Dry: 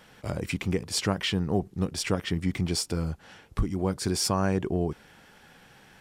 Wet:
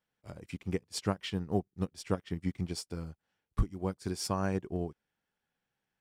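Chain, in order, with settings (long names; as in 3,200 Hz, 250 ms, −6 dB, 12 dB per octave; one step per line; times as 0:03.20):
surface crackle 27 per second −47 dBFS
expander for the loud parts 2.5 to 1, over −42 dBFS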